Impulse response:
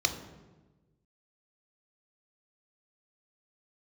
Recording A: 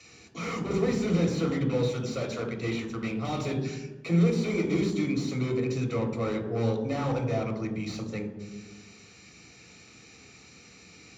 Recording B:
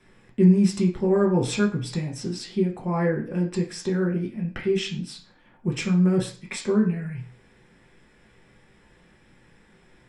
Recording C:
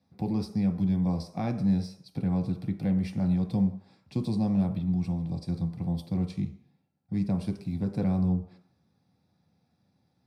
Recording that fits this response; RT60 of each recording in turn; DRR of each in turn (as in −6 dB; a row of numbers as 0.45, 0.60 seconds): A; 1.2, 0.40, 0.60 seconds; 6.0, −2.0, 3.5 decibels